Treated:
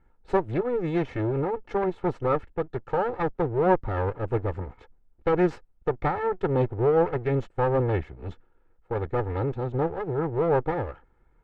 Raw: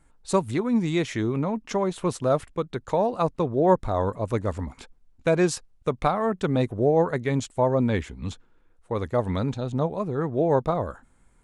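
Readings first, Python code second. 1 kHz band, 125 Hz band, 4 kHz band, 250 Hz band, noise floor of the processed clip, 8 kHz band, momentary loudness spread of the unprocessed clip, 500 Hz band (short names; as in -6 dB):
-1.0 dB, -1.0 dB, under -10 dB, -4.0 dB, -63 dBFS, under -25 dB, 9 LU, -1.0 dB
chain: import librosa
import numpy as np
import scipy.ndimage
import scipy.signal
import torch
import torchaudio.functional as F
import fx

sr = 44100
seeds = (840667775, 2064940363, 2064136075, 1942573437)

y = fx.lower_of_two(x, sr, delay_ms=2.3)
y = scipy.signal.sosfilt(scipy.signal.butter(2, 1700.0, 'lowpass', fs=sr, output='sos'), y)
y = fx.notch(y, sr, hz=1100.0, q=11.0)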